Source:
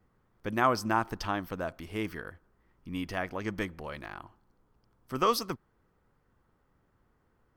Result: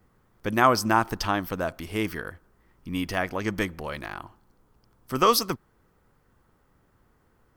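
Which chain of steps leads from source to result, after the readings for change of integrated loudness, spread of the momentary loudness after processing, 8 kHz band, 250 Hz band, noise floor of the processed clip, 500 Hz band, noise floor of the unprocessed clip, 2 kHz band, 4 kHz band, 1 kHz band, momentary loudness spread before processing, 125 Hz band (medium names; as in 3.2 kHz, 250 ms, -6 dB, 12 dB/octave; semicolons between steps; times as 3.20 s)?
+6.5 dB, 15 LU, +10.0 dB, +6.0 dB, -66 dBFS, +6.0 dB, -72 dBFS, +6.5 dB, +8.5 dB, +6.0 dB, 15 LU, +6.0 dB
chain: treble shelf 5.4 kHz +6.5 dB; trim +6 dB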